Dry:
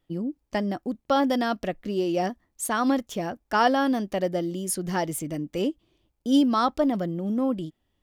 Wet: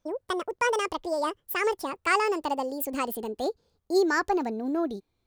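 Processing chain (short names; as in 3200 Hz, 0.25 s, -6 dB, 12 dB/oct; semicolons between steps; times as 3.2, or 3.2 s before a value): speed glide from 183% -> 122%; gain -2.5 dB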